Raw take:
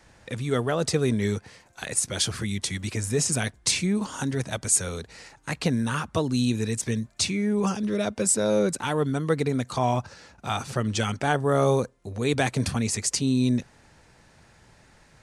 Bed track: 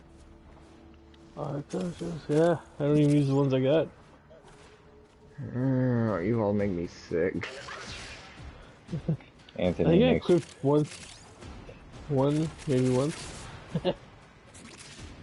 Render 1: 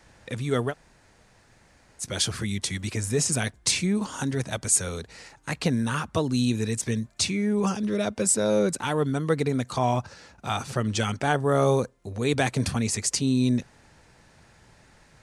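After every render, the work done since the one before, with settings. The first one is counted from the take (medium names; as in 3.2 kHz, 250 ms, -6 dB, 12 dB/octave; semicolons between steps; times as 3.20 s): 0.71–2.02 s: room tone, crossfade 0.06 s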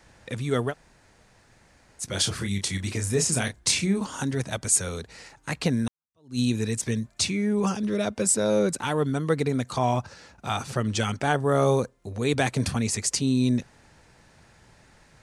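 2.09–4.01 s: doubling 31 ms -7.5 dB; 5.88–6.39 s: fade in exponential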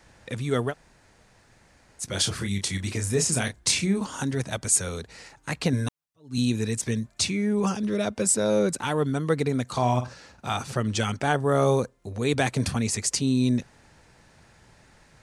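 5.72–6.38 s: comb 6.9 ms, depth 96%; 9.67–10.54 s: flutter echo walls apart 8.3 m, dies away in 0.28 s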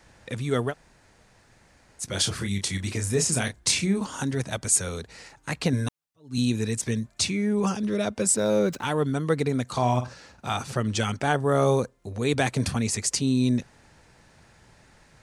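8.36–8.85 s: median filter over 5 samples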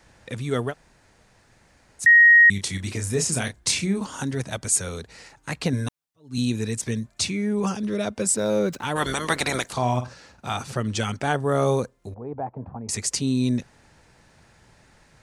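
2.06–2.50 s: bleep 1.88 kHz -9 dBFS; 8.95–9.72 s: spectral peaks clipped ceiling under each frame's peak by 27 dB; 12.14–12.89 s: four-pole ladder low-pass 960 Hz, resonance 60%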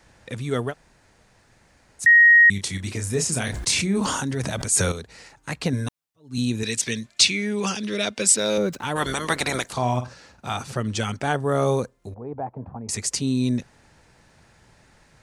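3.41–4.92 s: decay stretcher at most 27 dB/s; 6.63–8.58 s: frequency weighting D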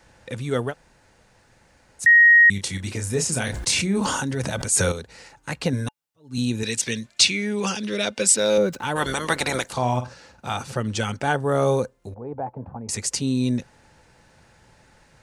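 small resonant body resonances 520/860/1500/2800 Hz, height 6 dB, ringing for 65 ms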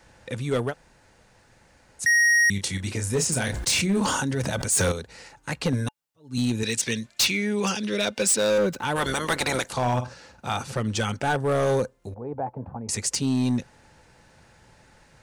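overload inside the chain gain 17.5 dB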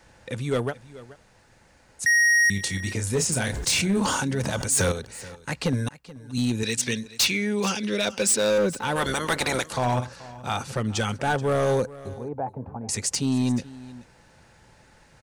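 delay 430 ms -18.5 dB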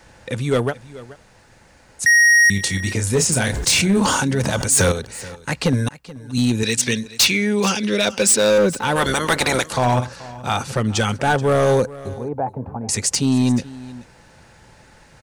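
trim +6.5 dB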